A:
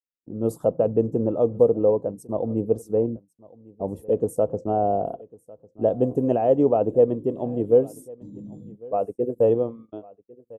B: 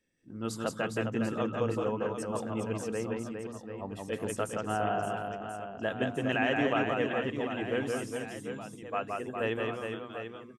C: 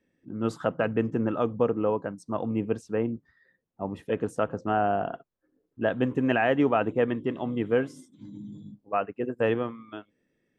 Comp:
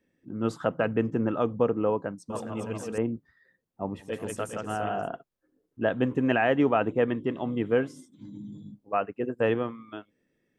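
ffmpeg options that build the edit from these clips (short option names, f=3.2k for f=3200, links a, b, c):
-filter_complex "[1:a]asplit=2[a][b];[2:a]asplit=3[c][d][e];[c]atrim=end=2.302[f];[a]atrim=start=2.298:end=2.982[g];[d]atrim=start=2.978:end=4.15[h];[b]atrim=start=3.99:end=5.09[i];[e]atrim=start=4.93[j];[f][g]acrossfade=d=0.004:c1=hsin:c2=hsin[k];[k][h]acrossfade=d=0.004:c1=hsin:c2=hsin[l];[l][i]acrossfade=d=0.16:c1=tri:c2=tri[m];[m][j]acrossfade=d=0.16:c1=tri:c2=tri"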